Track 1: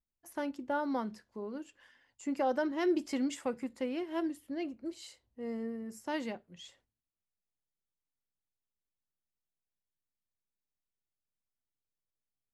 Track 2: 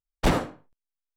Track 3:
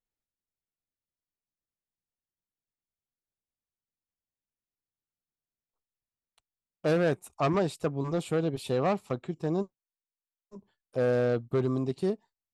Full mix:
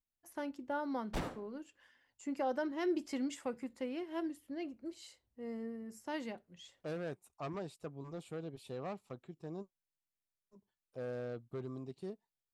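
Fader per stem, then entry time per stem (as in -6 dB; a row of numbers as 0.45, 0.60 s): -4.5, -16.5, -15.5 dB; 0.00, 0.90, 0.00 s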